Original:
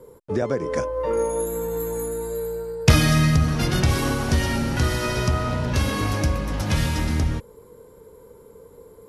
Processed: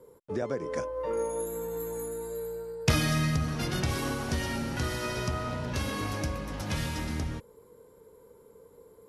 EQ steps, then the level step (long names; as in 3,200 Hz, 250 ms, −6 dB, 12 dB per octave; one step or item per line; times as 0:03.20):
low-shelf EQ 97 Hz −7 dB
−7.5 dB